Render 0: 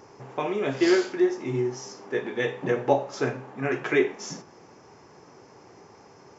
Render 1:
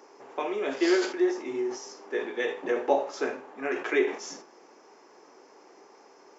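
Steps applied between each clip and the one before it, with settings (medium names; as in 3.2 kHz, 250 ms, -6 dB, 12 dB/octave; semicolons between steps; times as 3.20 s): high-pass 280 Hz 24 dB/octave; decay stretcher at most 120 dB/s; trim -2.5 dB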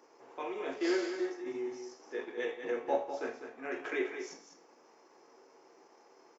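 transient shaper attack -3 dB, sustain -8 dB; delay 199 ms -8.5 dB; reverberation RT60 0.50 s, pre-delay 5 ms, DRR 4.5 dB; trim -8 dB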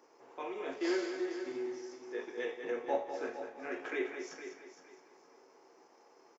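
feedback delay 462 ms, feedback 23%, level -11 dB; trim -2 dB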